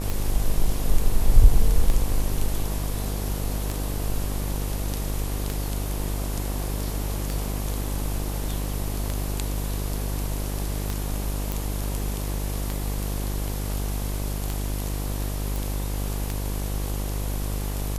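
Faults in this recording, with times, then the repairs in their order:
buzz 50 Hz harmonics 24 -28 dBFS
tick 33 1/3 rpm
11.52 pop
15.56 pop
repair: de-click; de-hum 50 Hz, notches 24

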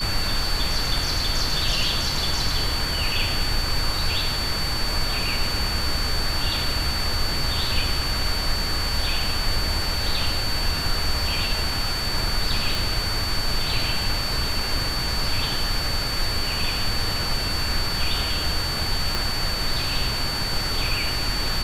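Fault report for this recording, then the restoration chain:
tone 4500 Hz -27 dBFS
12.75 pop
19.15 pop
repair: de-click; notch 4500 Hz, Q 30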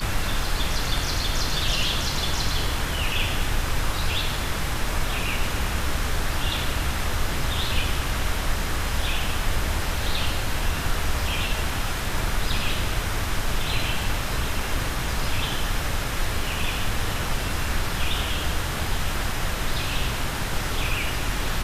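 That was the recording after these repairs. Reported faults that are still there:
19.15 pop

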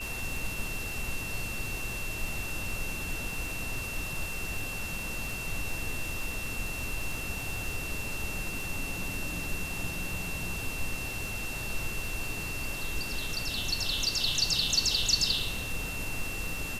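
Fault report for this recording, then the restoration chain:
crackle 40/s -38 dBFS
tone 2700 Hz -37 dBFS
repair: de-click; notch 2700 Hz, Q 30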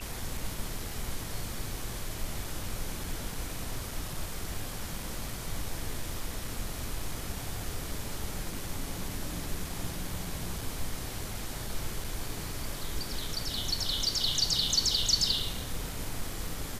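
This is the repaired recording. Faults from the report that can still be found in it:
none

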